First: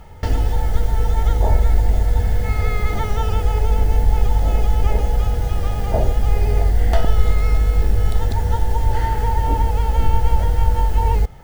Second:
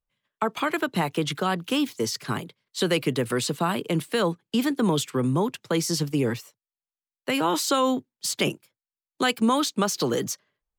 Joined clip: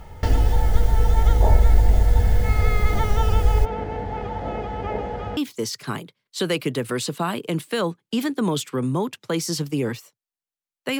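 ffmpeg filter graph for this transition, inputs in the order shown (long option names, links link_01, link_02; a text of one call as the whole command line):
ffmpeg -i cue0.wav -i cue1.wav -filter_complex "[0:a]asplit=3[link_01][link_02][link_03];[link_01]afade=type=out:start_time=3.64:duration=0.02[link_04];[link_02]highpass=160,lowpass=2300,afade=type=in:start_time=3.64:duration=0.02,afade=type=out:start_time=5.37:duration=0.02[link_05];[link_03]afade=type=in:start_time=5.37:duration=0.02[link_06];[link_04][link_05][link_06]amix=inputs=3:normalize=0,apad=whole_dur=10.99,atrim=end=10.99,atrim=end=5.372[link_07];[1:a]atrim=start=1.778:end=7.4[link_08];[link_07][link_08]acrossfade=duration=0.004:curve1=hsin:curve2=hsin" out.wav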